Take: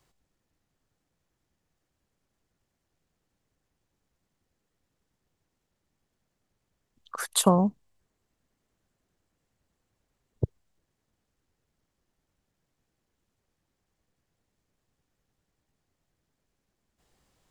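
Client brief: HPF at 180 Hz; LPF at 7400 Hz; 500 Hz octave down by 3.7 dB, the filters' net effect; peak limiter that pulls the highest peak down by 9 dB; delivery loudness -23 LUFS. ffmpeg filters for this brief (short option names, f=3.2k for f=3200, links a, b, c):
-af "highpass=180,lowpass=7.4k,equalizer=f=500:t=o:g=-4.5,volume=9.5dB,alimiter=limit=-8dB:level=0:latency=1"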